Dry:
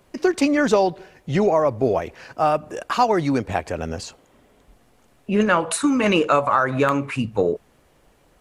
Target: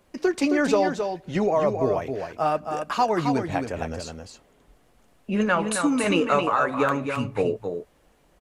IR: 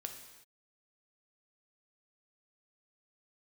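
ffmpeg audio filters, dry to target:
-filter_complex "[0:a]flanger=delay=3.6:depth=3.4:regen=-63:speed=0.75:shape=sinusoidal,asplit=2[a][b];[b]aecho=0:1:267:0.473[c];[a][c]amix=inputs=2:normalize=0"

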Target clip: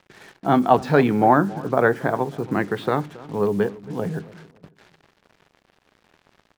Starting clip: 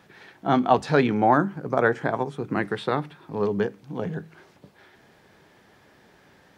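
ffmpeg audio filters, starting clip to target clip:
-filter_complex "[0:a]highshelf=f=3k:g=-8,acrusher=bits=7:mix=0:aa=0.5,asplit=2[a][b];[b]adelay=275,lowpass=f=1k:p=1,volume=-18dB,asplit=2[c][d];[d]adelay=275,lowpass=f=1k:p=1,volume=0.3,asplit=2[e][f];[f]adelay=275,lowpass=f=1k:p=1,volume=0.3[g];[a][c][e][g]amix=inputs=4:normalize=0,volume=3.5dB"

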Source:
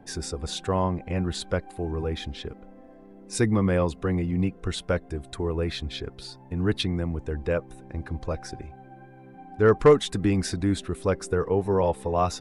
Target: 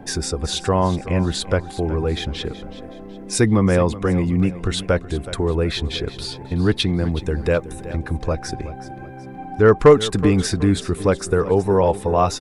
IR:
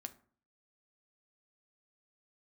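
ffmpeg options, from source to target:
-filter_complex "[0:a]asettb=1/sr,asplit=3[a][b][c];[a]atrim=end=7.114[d];[b]atrim=start=7.11:end=7.96,asetpts=PTS-STARTPTS,afade=t=in:d=0.004:c=qsin,afade=t=out:st=0.846:d=0.004:c=qsin,highshelf=f=4.9k:g=8[e];[c]atrim=start=7.956[f];[d][e]acrossfade=d=0.004:c1=hsin:c2=qsin[g];[g][f]acrossfade=d=0.004:c1=qsin:c2=hsin,asplit=2[h][i];[i]acompressor=threshold=-37dB:ratio=6,volume=1dB[j];[h][j]amix=inputs=2:normalize=0,aecho=1:1:373|746|1119:0.178|0.0676|0.0257,volume=5dB"

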